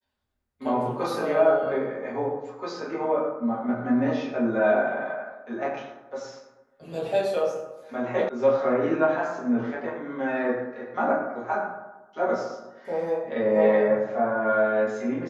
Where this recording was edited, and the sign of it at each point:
8.29 sound cut off

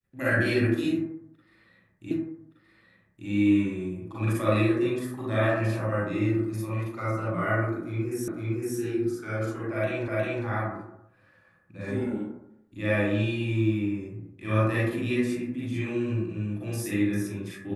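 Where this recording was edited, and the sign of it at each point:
2.11 repeat of the last 1.17 s
8.28 repeat of the last 0.51 s
10.08 repeat of the last 0.36 s

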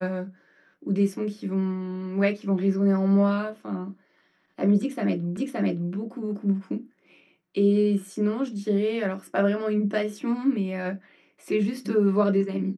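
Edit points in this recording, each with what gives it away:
5.37 repeat of the last 0.57 s

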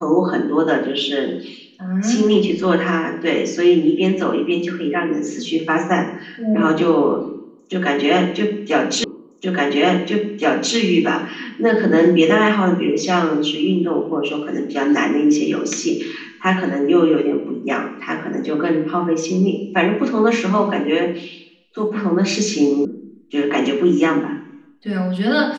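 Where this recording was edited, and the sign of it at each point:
9.04 repeat of the last 1.72 s
22.85 sound cut off

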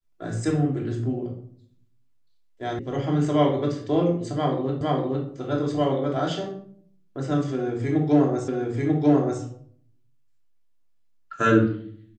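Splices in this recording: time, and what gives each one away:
2.79 sound cut off
4.81 repeat of the last 0.46 s
8.48 repeat of the last 0.94 s

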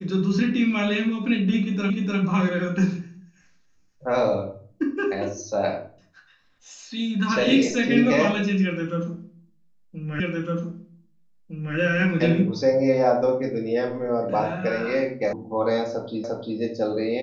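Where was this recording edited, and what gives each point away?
1.9 repeat of the last 0.3 s
10.2 repeat of the last 1.56 s
15.33 sound cut off
16.24 repeat of the last 0.35 s

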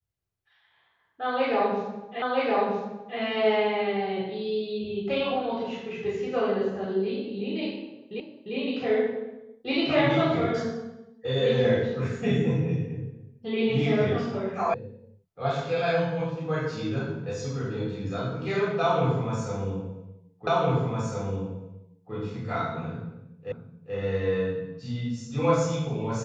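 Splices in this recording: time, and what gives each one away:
2.22 repeat of the last 0.97 s
8.2 repeat of the last 0.35 s
14.74 sound cut off
20.47 repeat of the last 1.66 s
23.52 repeat of the last 0.43 s

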